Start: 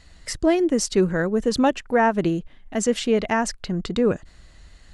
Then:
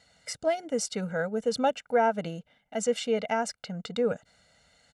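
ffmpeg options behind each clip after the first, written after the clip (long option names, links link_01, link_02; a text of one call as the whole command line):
ffmpeg -i in.wav -af "highpass=200,equalizer=frequency=460:width_type=o:width=0.3:gain=7,aecho=1:1:1.4:0.93,volume=-9dB" out.wav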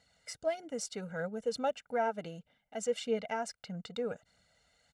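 ffmpeg -i in.wav -af "aphaser=in_gain=1:out_gain=1:delay=3.1:decay=0.34:speed=1.6:type=triangular,volume=-8dB" out.wav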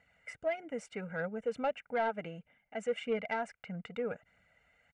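ffmpeg -i in.wav -af "aresample=22050,aresample=44100,highshelf=frequency=3200:width_type=q:width=3:gain=-11,asoftclip=type=tanh:threshold=-22.5dB" out.wav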